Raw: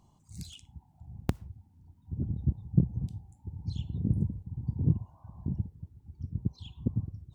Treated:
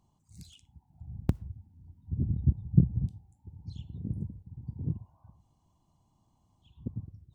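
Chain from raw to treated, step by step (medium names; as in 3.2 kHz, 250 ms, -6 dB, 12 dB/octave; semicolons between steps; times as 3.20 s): 0.90–3.10 s: bass shelf 420 Hz +11 dB; 5.37–6.69 s: room tone, crossfade 0.16 s; trim -7 dB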